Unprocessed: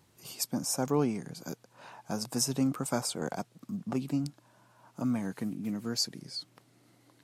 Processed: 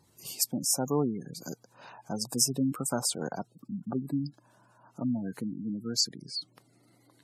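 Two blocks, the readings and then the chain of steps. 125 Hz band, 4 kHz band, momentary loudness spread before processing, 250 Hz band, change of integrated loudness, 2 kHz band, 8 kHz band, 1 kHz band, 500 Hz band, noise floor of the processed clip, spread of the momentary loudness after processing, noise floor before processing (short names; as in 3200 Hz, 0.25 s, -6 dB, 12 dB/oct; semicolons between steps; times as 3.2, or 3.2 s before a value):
0.0 dB, +3.5 dB, 15 LU, 0.0 dB, +2.0 dB, -3.0 dB, +5.0 dB, -1.0 dB, 0.0 dB, -66 dBFS, 15 LU, -66 dBFS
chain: high shelf 5000 Hz +7.5 dB; spectral gate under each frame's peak -20 dB strong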